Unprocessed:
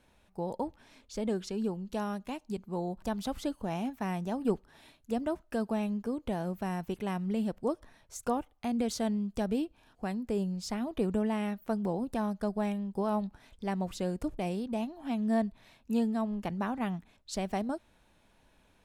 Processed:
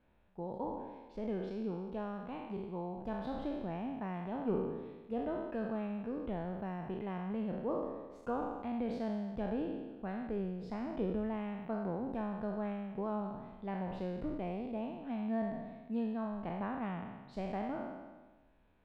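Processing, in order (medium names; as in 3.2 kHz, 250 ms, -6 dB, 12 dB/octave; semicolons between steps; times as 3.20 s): spectral sustain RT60 1.30 s; distance through air 450 m; trim -6.5 dB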